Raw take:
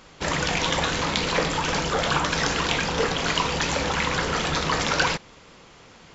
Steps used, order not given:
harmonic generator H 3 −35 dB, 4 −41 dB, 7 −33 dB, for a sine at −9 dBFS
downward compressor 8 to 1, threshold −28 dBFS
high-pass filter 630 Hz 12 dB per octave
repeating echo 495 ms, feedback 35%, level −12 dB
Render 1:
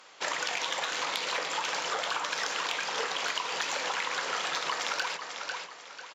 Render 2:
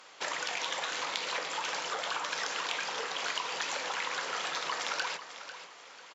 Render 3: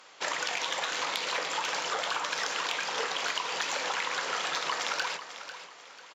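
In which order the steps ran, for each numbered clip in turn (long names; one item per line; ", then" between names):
repeating echo, then harmonic generator, then high-pass filter, then downward compressor
downward compressor, then repeating echo, then harmonic generator, then high-pass filter
harmonic generator, then high-pass filter, then downward compressor, then repeating echo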